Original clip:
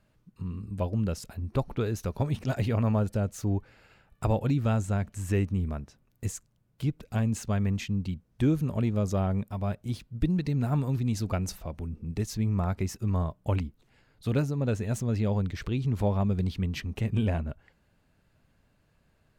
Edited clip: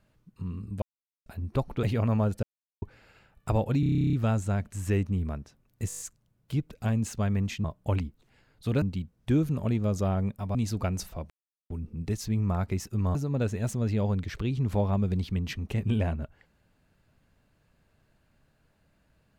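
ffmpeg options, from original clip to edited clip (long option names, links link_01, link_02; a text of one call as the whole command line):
ffmpeg -i in.wav -filter_complex "[0:a]asplit=28[link_01][link_02][link_03][link_04][link_05][link_06][link_07][link_08][link_09][link_10][link_11][link_12][link_13][link_14][link_15][link_16][link_17][link_18][link_19][link_20][link_21][link_22][link_23][link_24][link_25][link_26][link_27][link_28];[link_01]atrim=end=0.82,asetpts=PTS-STARTPTS,afade=type=out:start_time=0.816:duration=0.004:curve=hsin[link_29];[link_02]atrim=start=0.82:end=1.26,asetpts=PTS-STARTPTS,volume=0[link_30];[link_03]atrim=start=1.26:end=1.832,asetpts=PTS-STARTPTS,afade=type=in:duration=0.004:curve=hsin[link_31];[link_04]atrim=start=2.578:end=3.18,asetpts=PTS-STARTPTS,afade=type=out:start_time=0.598:duration=0.004:curve=hsin[link_32];[link_05]atrim=start=3.18:end=3.57,asetpts=PTS-STARTPTS,volume=0[link_33];[link_06]atrim=start=3.57:end=4.582,asetpts=PTS-STARTPTS,afade=type=in:duration=0.004:curve=hsin[link_34];[link_07]atrim=start=4.548:end=4.582[link_35];[link_08]atrim=start=4.548:end=4.582[link_36];[link_09]atrim=start=4.548:end=4.582[link_37];[link_10]atrim=start=4.548:end=4.582[link_38];[link_11]atrim=start=4.548:end=4.582[link_39];[link_12]atrim=start=4.548:end=4.582[link_40];[link_13]atrim=start=4.548:end=4.582[link_41];[link_14]atrim=start=4.548:end=4.582[link_42];[link_15]atrim=start=4.548:end=4.582[link_43];[link_16]atrim=start=4.548:end=4.582[link_44];[link_17]atrim=start=4.548:end=6.322[link_45];[link_18]atrim=start=6.298:end=6.322[link_46];[link_19]atrim=start=6.298:end=6.322[link_47];[link_20]atrim=start=6.298:end=6.322[link_48];[link_21]atrim=start=6.298:end=6.322[link_49];[link_22]atrim=start=6.298:end=6.322[link_50];[link_23]atrim=start=6.298:end=7.942[link_51];[link_24]atrim=start=13.238:end=14.422[link_52];[link_25]atrim=start=7.938:end=9.672[link_53];[link_26]atrim=start=11.038:end=11.79,asetpts=PTS-STARTPTS,afade=type=out:start_time=0.748:duration=0.004:curve=hsin,apad=pad_dur=0.4[link_54];[link_27]atrim=start=11.79:end=13.242,asetpts=PTS-STARTPTS,afade=type=in:duration=0.004:curve=hsin[link_55];[link_28]atrim=start=14.418[link_56];[link_29][link_30][link_31]concat=n=3:v=0:a=1[link_57];[link_32][link_33][link_34]concat=n=3:v=0:a=1[link_58];[link_57][link_58]acrossfade=duration=0.004:curve1=hsin:curve2=hsin[link_59];[link_59][link_35]acrossfade=duration=0.004:curve1=hsin:curve2=hsin[link_60];[link_60][link_36]acrossfade=duration=0.004:curve1=hsin:curve2=hsin[link_61];[link_61][link_37]acrossfade=duration=0.004:curve1=hsin:curve2=hsin[link_62];[link_62][link_38]acrossfade=duration=0.004:curve1=hsin:curve2=hsin[link_63];[link_63][link_39]acrossfade=duration=0.004:curve1=hsin:curve2=hsin[link_64];[link_64][link_40]acrossfade=duration=0.004:curve1=hsin:curve2=hsin[link_65];[link_65][link_41]acrossfade=duration=0.004:curve1=hsin:curve2=hsin[link_66];[link_66][link_42]acrossfade=duration=0.004:curve1=hsin:curve2=hsin[link_67];[link_67][link_43]acrossfade=duration=0.004:curve1=hsin:curve2=hsin[link_68];[link_68][link_44]acrossfade=duration=0.004:curve1=hsin:curve2=hsin[link_69];[link_69][link_45]acrossfade=duration=0.004:curve1=hsin:curve2=hsin[link_70];[link_70][link_46]acrossfade=duration=0.004:curve1=hsin:curve2=hsin[link_71];[link_71][link_47]acrossfade=duration=0.004:curve1=hsin:curve2=hsin[link_72];[link_72][link_48]acrossfade=duration=0.004:curve1=hsin:curve2=hsin[link_73];[link_73][link_49]acrossfade=duration=0.004:curve1=hsin:curve2=hsin[link_74];[link_74][link_50]acrossfade=duration=0.004:curve1=hsin:curve2=hsin[link_75];[link_75][link_51]acrossfade=duration=0.004:curve1=hsin:curve2=hsin[link_76];[link_76][link_52]acrossfade=duration=0.004:curve1=hsin:curve2=hsin[link_77];[link_77][link_53]acrossfade=duration=0.004:curve1=hsin:curve2=hsin[link_78];[link_54][link_55]concat=n=2:v=0:a=1[link_79];[link_78][link_79]acrossfade=duration=0.004:curve1=hsin:curve2=hsin[link_80];[link_80][link_56]acrossfade=duration=0.004:curve1=hsin:curve2=hsin" out.wav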